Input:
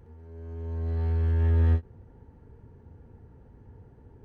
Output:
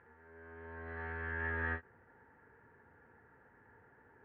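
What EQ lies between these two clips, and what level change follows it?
band-pass 1700 Hz, Q 3.8; air absorption 480 m; +16.0 dB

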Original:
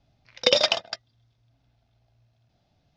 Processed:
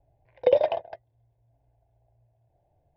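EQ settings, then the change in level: ladder low-pass 1600 Hz, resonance 25%; fixed phaser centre 530 Hz, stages 4; +8.5 dB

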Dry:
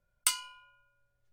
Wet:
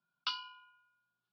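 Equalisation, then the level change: steep high-pass 160 Hz 36 dB/oct; Chebyshev low-pass 5500 Hz, order 6; fixed phaser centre 2000 Hz, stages 6; 0.0 dB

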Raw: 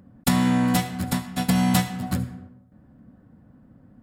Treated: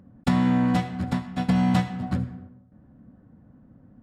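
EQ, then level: tape spacing loss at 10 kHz 21 dB; 0.0 dB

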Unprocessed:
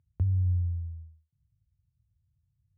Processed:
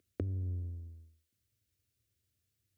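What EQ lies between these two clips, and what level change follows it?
Chebyshev high-pass 280 Hz, order 2; fixed phaser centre 370 Hz, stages 4; +13.5 dB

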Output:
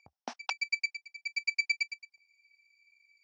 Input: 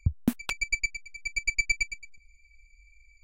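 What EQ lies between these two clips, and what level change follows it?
resonant high-pass 780 Hz, resonance Q 4.5; synth low-pass 5500 Hz, resonance Q 7.3; air absorption 120 m; -4.5 dB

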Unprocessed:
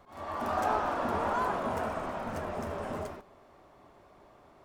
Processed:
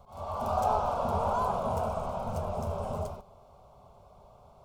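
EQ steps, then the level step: low shelf 380 Hz +8 dB; fixed phaser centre 750 Hz, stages 4; +1.5 dB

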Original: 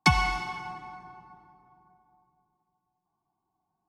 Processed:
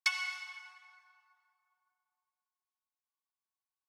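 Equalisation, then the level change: HPF 1500 Hz 24 dB/oct; -6.0 dB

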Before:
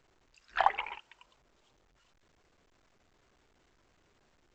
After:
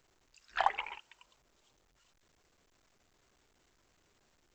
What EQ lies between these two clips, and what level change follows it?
high shelf 5500 Hz +11.5 dB; -3.5 dB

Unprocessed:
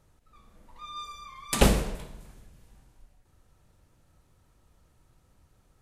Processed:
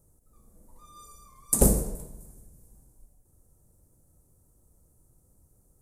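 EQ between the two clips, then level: EQ curve 480 Hz 0 dB, 3100 Hz -24 dB, 8900 Hz +10 dB; 0.0 dB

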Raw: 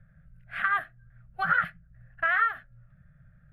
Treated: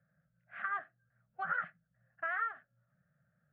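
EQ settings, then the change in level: HPF 280 Hz 12 dB/oct; LPF 1300 Hz 6 dB/oct; air absorption 260 m; -5.5 dB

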